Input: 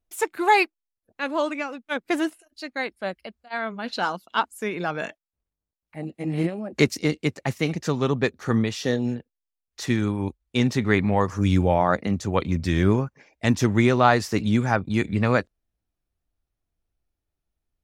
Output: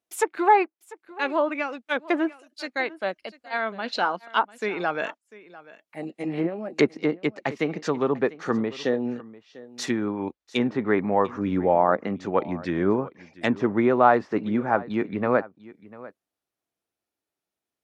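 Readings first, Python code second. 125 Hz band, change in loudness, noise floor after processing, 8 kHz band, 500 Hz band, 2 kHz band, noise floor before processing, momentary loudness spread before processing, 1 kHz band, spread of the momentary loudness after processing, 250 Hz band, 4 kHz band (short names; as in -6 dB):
-11.0 dB, -1.0 dB, under -85 dBFS, -5.5 dB, +1.5 dB, -2.0 dB, under -85 dBFS, 13 LU, +1.0 dB, 12 LU, -2.0 dB, -4.0 dB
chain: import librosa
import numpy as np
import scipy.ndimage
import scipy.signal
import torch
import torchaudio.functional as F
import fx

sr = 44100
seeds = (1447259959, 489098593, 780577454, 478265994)

y = fx.env_lowpass_down(x, sr, base_hz=1300.0, full_db=-19.0)
y = scipy.signal.sosfilt(scipy.signal.butter(2, 280.0, 'highpass', fs=sr, output='sos'), y)
y = y + 10.0 ** (-19.5 / 20.0) * np.pad(y, (int(696 * sr / 1000.0), 0))[:len(y)]
y = F.gain(torch.from_numpy(y), 2.0).numpy()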